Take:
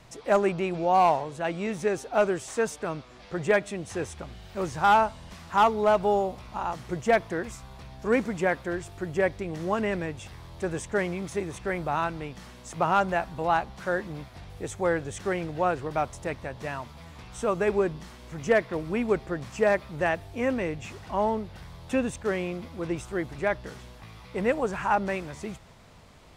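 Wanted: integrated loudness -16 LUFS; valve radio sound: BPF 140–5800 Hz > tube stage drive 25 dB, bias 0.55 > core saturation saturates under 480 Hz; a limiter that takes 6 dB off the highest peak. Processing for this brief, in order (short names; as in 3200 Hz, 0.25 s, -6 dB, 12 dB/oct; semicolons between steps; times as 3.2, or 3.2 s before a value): limiter -19.5 dBFS; BPF 140–5800 Hz; tube stage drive 25 dB, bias 0.55; core saturation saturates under 480 Hz; gain +21.5 dB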